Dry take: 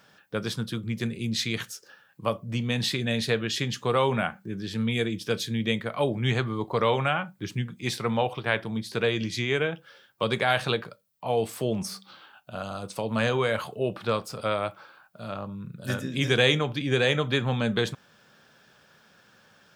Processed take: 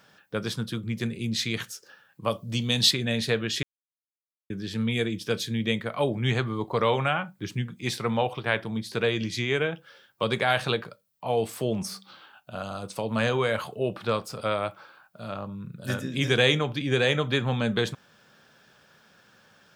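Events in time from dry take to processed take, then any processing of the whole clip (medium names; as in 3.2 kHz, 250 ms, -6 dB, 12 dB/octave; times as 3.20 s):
2.30–2.91 s: resonant high shelf 2.8 kHz +7.5 dB, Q 1.5
3.63–4.50 s: mute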